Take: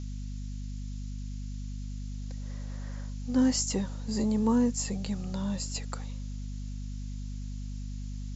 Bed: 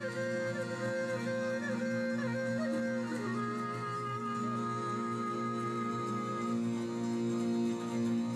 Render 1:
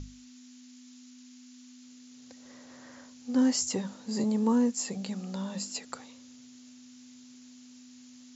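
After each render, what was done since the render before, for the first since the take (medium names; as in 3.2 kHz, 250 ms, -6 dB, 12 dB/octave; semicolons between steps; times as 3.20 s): hum notches 50/100/150/200 Hz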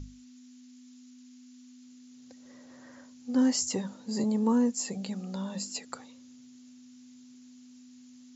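noise reduction 6 dB, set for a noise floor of -52 dBFS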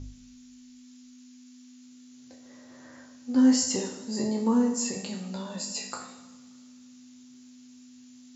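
spectral sustain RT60 0.30 s; two-slope reverb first 0.81 s, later 2.6 s, from -18 dB, DRR 3 dB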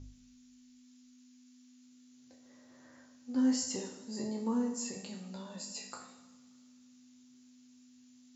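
trim -9 dB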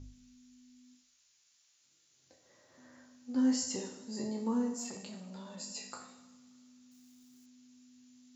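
0.93–2.78 s: hum notches 50/100/150/200/250/300/350/400/450 Hz; 4.77–5.59 s: transformer saturation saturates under 1.2 kHz; 6.91–7.46 s: zero-crossing glitches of -59.5 dBFS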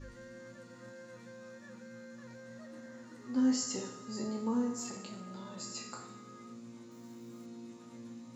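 add bed -16 dB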